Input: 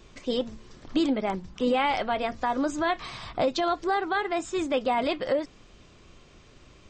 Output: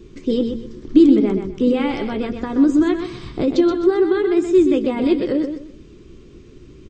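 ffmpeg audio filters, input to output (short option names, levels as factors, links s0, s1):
-filter_complex "[0:a]lowshelf=f=500:t=q:w=3:g=10,asplit=2[s0][s1];[s1]adelay=14,volume=0.237[s2];[s0][s2]amix=inputs=2:normalize=0,asplit=2[s3][s4];[s4]aecho=0:1:126|252|378:0.422|0.11|0.0285[s5];[s3][s5]amix=inputs=2:normalize=0,volume=0.891"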